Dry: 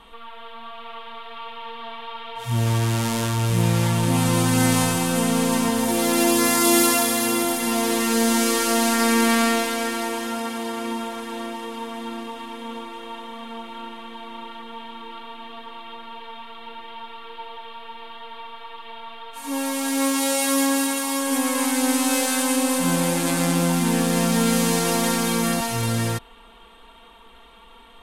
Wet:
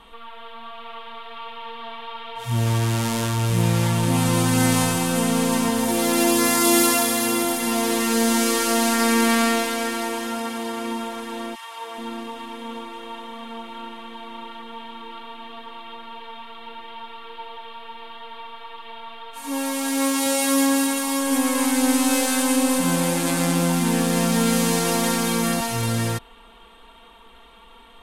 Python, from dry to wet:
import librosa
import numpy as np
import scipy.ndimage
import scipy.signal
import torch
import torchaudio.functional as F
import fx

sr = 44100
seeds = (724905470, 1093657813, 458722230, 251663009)

y = fx.highpass(x, sr, hz=fx.line((11.54, 1300.0), (11.97, 310.0)), slope=24, at=(11.54, 11.97), fade=0.02)
y = fx.low_shelf(y, sr, hz=150.0, db=9.5, at=(20.26, 22.81))